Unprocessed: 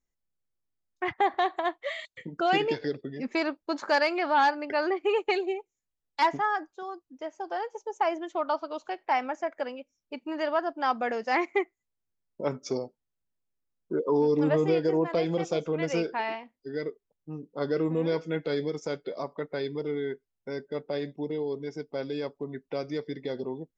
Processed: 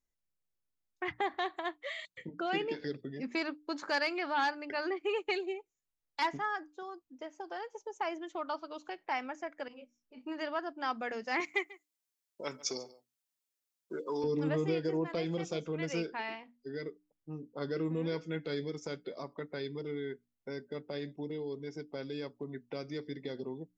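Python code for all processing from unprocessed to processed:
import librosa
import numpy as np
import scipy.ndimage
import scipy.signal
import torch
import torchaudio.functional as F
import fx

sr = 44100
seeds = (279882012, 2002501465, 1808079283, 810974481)

y = fx.chain(x, sr, fx.ellip_highpass(hz=170.0, order=4, stop_db=40),
    fx.high_shelf(hz=4300.0, db=-9.5), at=(2.29, 2.79))
y = fx.chain(y, sr, fx.over_compress(threshold_db=-43.0, ratio=-1.0),
    fx.detune_double(cents=42), at=(9.68, 10.25))
y = fx.chain(y, sr, fx.highpass(hz=510.0, slope=6),
    fx.high_shelf(hz=2400.0, db=11.5),
    fx.echo_single(ms=141, db=-20.5), at=(11.4, 14.24))
y = fx.dynamic_eq(y, sr, hz=680.0, q=0.82, threshold_db=-40.0, ratio=4.0, max_db=-7)
y = fx.hum_notches(y, sr, base_hz=60, count=5)
y = y * 10.0 ** (-3.5 / 20.0)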